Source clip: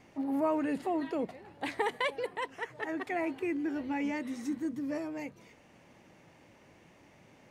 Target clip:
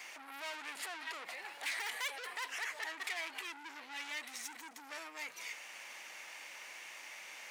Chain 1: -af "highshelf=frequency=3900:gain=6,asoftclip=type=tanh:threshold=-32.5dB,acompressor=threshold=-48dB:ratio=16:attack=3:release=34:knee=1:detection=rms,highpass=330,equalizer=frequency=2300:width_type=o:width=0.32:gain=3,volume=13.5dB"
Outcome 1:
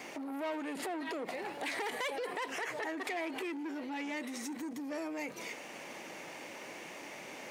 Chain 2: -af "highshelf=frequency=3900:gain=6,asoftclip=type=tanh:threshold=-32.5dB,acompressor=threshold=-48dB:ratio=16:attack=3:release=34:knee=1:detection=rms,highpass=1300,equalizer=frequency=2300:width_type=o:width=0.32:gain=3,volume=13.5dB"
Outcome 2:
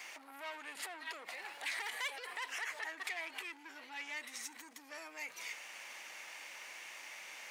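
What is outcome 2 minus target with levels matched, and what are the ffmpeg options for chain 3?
soft clipping: distortion −5 dB
-af "highshelf=frequency=3900:gain=6,asoftclip=type=tanh:threshold=-40.5dB,acompressor=threshold=-48dB:ratio=16:attack=3:release=34:knee=1:detection=rms,highpass=1300,equalizer=frequency=2300:width_type=o:width=0.32:gain=3,volume=13.5dB"

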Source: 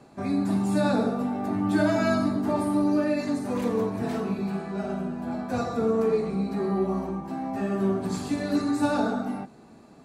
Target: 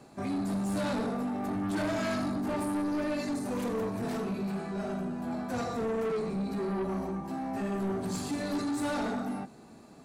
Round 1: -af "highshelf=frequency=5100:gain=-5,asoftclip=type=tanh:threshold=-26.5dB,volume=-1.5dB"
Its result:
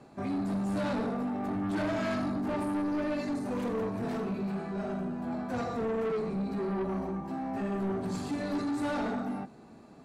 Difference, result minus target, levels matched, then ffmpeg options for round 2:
8,000 Hz band −8.0 dB
-af "highshelf=frequency=5100:gain=6.5,asoftclip=type=tanh:threshold=-26.5dB,volume=-1.5dB"

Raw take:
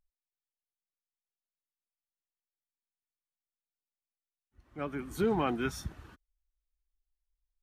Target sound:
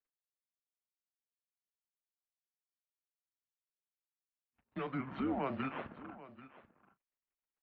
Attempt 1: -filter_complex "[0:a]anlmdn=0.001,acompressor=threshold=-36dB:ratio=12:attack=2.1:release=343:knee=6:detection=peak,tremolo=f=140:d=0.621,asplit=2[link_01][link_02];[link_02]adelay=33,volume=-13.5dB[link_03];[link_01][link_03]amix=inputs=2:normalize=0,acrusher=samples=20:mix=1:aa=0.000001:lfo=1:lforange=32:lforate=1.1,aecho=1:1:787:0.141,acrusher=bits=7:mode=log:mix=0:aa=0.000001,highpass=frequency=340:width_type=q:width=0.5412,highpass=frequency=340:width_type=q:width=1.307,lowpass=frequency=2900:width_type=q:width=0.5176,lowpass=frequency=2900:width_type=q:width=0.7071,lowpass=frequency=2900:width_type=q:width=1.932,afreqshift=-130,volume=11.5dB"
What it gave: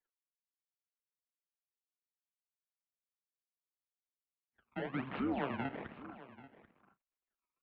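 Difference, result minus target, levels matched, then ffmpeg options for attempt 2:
sample-and-hold swept by an LFO: distortion +7 dB
-filter_complex "[0:a]anlmdn=0.001,acompressor=threshold=-36dB:ratio=12:attack=2.1:release=343:knee=6:detection=peak,tremolo=f=140:d=0.621,asplit=2[link_01][link_02];[link_02]adelay=33,volume=-13.5dB[link_03];[link_01][link_03]amix=inputs=2:normalize=0,acrusher=samples=6:mix=1:aa=0.000001:lfo=1:lforange=9.6:lforate=1.1,aecho=1:1:787:0.141,acrusher=bits=7:mode=log:mix=0:aa=0.000001,highpass=frequency=340:width_type=q:width=0.5412,highpass=frequency=340:width_type=q:width=1.307,lowpass=frequency=2900:width_type=q:width=0.5176,lowpass=frequency=2900:width_type=q:width=0.7071,lowpass=frequency=2900:width_type=q:width=1.932,afreqshift=-130,volume=11.5dB"

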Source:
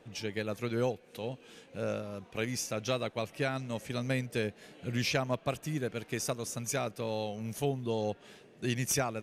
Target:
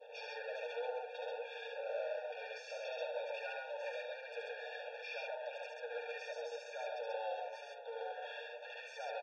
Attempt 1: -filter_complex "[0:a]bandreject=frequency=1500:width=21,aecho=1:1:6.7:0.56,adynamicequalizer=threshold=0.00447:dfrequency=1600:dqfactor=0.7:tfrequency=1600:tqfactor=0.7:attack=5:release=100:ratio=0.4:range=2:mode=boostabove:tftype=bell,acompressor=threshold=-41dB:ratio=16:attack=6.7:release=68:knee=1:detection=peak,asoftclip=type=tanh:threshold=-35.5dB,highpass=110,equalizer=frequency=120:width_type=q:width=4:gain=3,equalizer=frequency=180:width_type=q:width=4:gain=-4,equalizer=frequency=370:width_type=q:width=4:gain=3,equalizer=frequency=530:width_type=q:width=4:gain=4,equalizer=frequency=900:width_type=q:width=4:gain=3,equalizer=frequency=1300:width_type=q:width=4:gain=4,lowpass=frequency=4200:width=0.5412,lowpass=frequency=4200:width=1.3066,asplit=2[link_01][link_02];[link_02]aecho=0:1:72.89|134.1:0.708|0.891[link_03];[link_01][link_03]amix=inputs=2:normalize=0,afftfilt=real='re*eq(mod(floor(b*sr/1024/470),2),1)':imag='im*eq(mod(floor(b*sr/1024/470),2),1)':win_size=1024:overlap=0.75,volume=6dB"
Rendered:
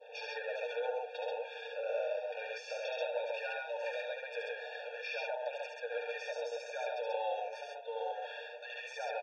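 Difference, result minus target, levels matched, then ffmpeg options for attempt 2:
soft clipping: distortion −10 dB
-filter_complex "[0:a]bandreject=frequency=1500:width=21,aecho=1:1:6.7:0.56,adynamicequalizer=threshold=0.00447:dfrequency=1600:dqfactor=0.7:tfrequency=1600:tqfactor=0.7:attack=5:release=100:ratio=0.4:range=2:mode=boostabove:tftype=bell,acompressor=threshold=-41dB:ratio=16:attack=6.7:release=68:knee=1:detection=peak,asoftclip=type=tanh:threshold=-46.5dB,highpass=110,equalizer=frequency=120:width_type=q:width=4:gain=3,equalizer=frequency=180:width_type=q:width=4:gain=-4,equalizer=frequency=370:width_type=q:width=4:gain=3,equalizer=frequency=530:width_type=q:width=4:gain=4,equalizer=frequency=900:width_type=q:width=4:gain=3,equalizer=frequency=1300:width_type=q:width=4:gain=4,lowpass=frequency=4200:width=0.5412,lowpass=frequency=4200:width=1.3066,asplit=2[link_01][link_02];[link_02]aecho=0:1:72.89|134.1:0.708|0.891[link_03];[link_01][link_03]amix=inputs=2:normalize=0,afftfilt=real='re*eq(mod(floor(b*sr/1024/470),2),1)':imag='im*eq(mod(floor(b*sr/1024/470),2),1)':win_size=1024:overlap=0.75,volume=6dB"

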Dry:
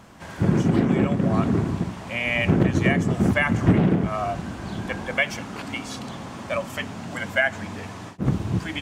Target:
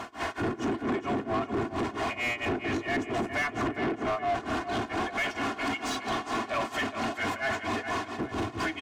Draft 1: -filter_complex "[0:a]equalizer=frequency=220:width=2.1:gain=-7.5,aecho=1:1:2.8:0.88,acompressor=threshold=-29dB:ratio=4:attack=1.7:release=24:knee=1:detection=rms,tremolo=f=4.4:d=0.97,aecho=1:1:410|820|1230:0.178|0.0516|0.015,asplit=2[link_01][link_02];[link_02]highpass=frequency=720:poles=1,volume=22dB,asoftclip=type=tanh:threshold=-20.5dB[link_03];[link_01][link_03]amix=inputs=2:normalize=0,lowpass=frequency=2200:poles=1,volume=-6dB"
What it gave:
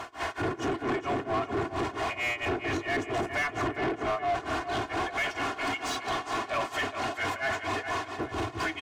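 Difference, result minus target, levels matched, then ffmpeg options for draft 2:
250 Hz band −3.0 dB
-filter_complex "[0:a]equalizer=frequency=220:width=2.1:gain=4,aecho=1:1:2.8:0.88,acompressor=threshold=-29dB:ratio=4:attack=1.7:release=24:knee=1:detection=rms,tremolo=f=4.4:d=0.97,aecho=1:1:410|820|1230:0.178|0.0516|0.015,asplit=2[link_01][link_02];[link_02]highpass=frequency=720:poles=1,volume=22dB,asoftclip=type=tanh:threshold=-20.5dB[link_03];[link_01][link_03]amix=inputs=2:normalize=0,lowpass=frequency=2200:poles=1,volume=-6dB"

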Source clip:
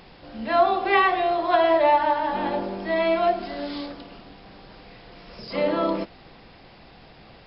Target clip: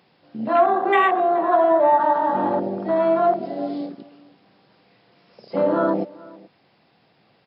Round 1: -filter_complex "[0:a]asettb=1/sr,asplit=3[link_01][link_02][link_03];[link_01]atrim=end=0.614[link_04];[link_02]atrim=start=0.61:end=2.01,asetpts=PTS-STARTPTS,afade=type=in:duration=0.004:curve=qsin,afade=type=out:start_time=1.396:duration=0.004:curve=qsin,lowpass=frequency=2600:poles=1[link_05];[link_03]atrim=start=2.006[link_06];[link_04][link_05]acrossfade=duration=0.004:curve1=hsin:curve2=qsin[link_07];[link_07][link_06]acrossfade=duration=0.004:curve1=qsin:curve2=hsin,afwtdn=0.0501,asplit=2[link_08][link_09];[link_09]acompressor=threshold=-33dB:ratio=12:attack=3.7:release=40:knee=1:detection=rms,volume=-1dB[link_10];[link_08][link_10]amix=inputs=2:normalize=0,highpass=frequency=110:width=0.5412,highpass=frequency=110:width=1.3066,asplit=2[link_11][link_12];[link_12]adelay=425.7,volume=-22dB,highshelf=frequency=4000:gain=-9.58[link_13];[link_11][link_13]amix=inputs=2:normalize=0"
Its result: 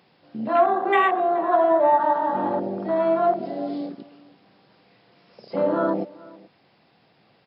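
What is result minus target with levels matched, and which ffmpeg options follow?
downward compressor: peak gain reduction +9 dB
-filter_complex "[0:a]asettb=1/sr,asplit=3[link_01][link_02][link_03];[link_01]atrim=end=0.614[link_04];[link_02]atrim=start=0.61:end=2.01,asetpts=PTS-STARTPTS,afade=type=in:duration=0.004:curve=qsin,afade=type=out:start_time=1.396:duration=0.004:curve=qsin,lowpass=frequency=2600:poles=1[link_05];[link_03]atrim=start=2.006[link_06];[link_04][link_05]acrossfade=duration=0.004:curve1=hsin:curve2=qsin[link_07];[link_07][link_06]acrossfade=duration=0.004:curve1=qsin:curve2=hsin,afwtdn=0.0501,asplit=2[link_08][link_09];[link_09]acompressor=threshold=-23dB:ratio=12:attack=3.7:release=40:knee=1:detection=rms,volume=-1dB[link_10];[link_08][link_10]amix=inputs=2:normalize=0,highpass=frequency=110:width=0.5412,highpass=frequency=110:width=1.3066,asplit=2[link_11][link_12];[link_12]adelay=425.7,volume=-22dB,highshelf=frequency=4000:gain=-9.58[link_13];[link_11][link_13]amix=inputs=2:normalize=0"

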